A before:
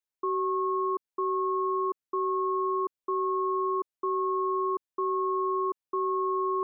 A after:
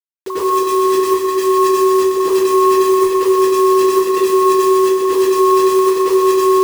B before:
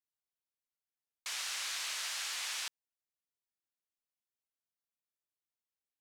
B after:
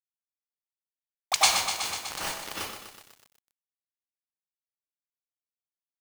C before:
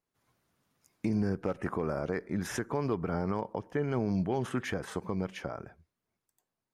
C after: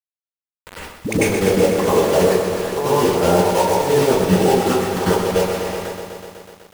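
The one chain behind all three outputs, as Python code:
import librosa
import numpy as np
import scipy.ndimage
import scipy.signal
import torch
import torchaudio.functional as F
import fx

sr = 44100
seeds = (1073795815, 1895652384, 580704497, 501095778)

y = fx.recorder_agc(x, sr, target_db=-28.0, rise_db_per_s=58.0, max_gain_db=30)
y = fx.band_shelf(y, sr, hz=630.0, db=10.0, octaves=1.7)
y = fx.dispersion(y, sr, late='highs', ms=81.0, hz=440.0)
y = fx.env_lowpass(y, sr, base_hz=1000.0, full_db=-17.0)
y = y * (1.0 - 0.85 / 2.0 + 0.85 / 2.0 * np.cos(2.0 * np.pi * 2.8 * (np.arange(len(y)) / sr)))
y = scipy.signal.sosfilt(scipy.signal.butter(4, 44.0, 'highpass', fs=sr, output='sos'), y)
y = fx.high_shelf(y, sr, hz=4100.0, db=8.0)
y = fx.echo_feedback(y, sr, ms=417, feedback_pct=35, wet_db=-17)
y = fx.quant_dither(y, sr, seeds[0], bits=6, dither='none')
y = fx.level_steps(y, sr, step_db=16)
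y = fx.rev_plate(y, sr, seeds[1], rt60_s=0.5, hf_ratio=0.75, predelay_ms=85, drr_db=-8.5)
y = fx.echo_crushed(y, sr, ms=124, feedback_pct=80, bits=9, wet_db=-8.0)
y = y * librosa.db_to_amplitude(9.0)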